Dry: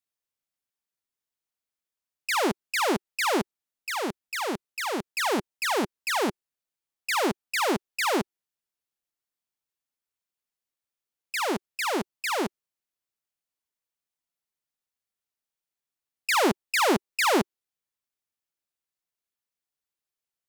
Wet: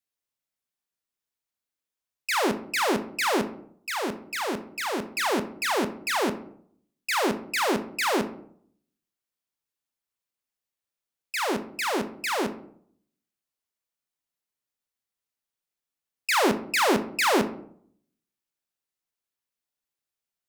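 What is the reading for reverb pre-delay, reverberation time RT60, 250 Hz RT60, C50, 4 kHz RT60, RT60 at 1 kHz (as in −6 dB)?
17 ms, 0.60 s, 0.80 s, 13.0 dB, 0.35 s, 0.60 s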